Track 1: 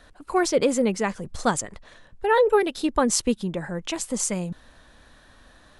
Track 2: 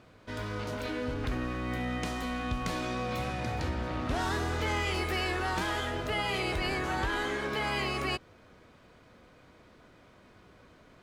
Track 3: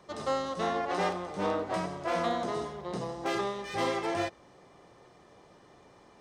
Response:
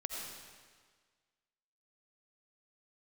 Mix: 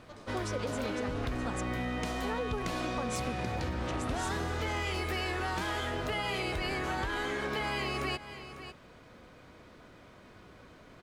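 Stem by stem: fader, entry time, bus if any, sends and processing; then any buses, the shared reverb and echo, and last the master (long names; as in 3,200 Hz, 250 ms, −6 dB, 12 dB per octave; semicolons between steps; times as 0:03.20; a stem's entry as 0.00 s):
−13.0 dB, 0.00 s, no send, no echo send, no processing
+3.0 dB, 0.00 s, no send, echo send −17 dB, no processing
−6.0 dB, 0.00 s, no send, echo send −5.5 dB, automatic ducking −10 dB, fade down 0.25 s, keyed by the first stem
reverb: not used
echo: single-tap delay 549 ms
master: downward compressor 4 to 1, threshold −31 dBFS, peak gain reduction 8 dB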